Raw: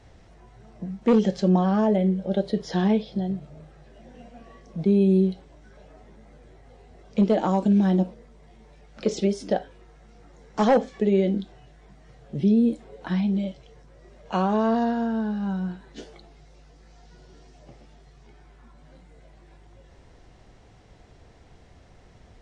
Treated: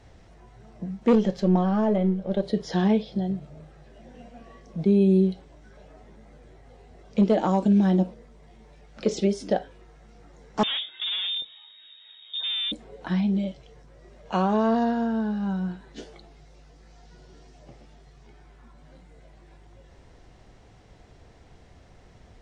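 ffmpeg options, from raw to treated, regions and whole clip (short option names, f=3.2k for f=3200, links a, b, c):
-filter_complex "[0:a]asettb=1/sr,asplit=3[a][b][c];[a]atrim=end=1.154[d];[b]atrim=start=1.15:end=2.43,asetpts=PTS-STARTPTS,afade=t=in:d=0.004:c=qsin,afade=t=out:st=1.276:d=0.004:c=qsin,aeval=exprs='if(lt(val(0),0),0.708*val(0),val(0))':c=same,highshelf=f=5.5k:g=-7[e];[c]atrim=start=2.426[f];[d][e]acrossfade=d=0.004:c1=hsin:c2=qsin[g];[g][f]acrossfade=d=0.004:c1=qsin:c2=hsin,asettb=1/sr,asplit=3[h][i][j];[h]atrim=end=10.634[k];[i]atrim=start=10.63:end=12.72,asetpts=PTS-STARTPTS,afade=t=in:d=0.004:c=qsin,afade=t=out:st=2.086:d=0.004:c=qsin,asoftclip=type=hard:threshold=-27.5dB,lowpass=f=3.2k:t=q:w=0.5098,lowpass=f=3.2k:t=q:w=0.6013,lowpass=f=3.2k:t=q:w=0.9,lowpass=f=3.2k:t=q:w=2.563,afreqshift=-3800[l];[j]atrim=start=12.716[m];[k][l]acrossfade=d=0.004:c1=hsin:c2=qsin[n];[n][m]acrossfade=d=0.004:c1=qsin:c2=hsin"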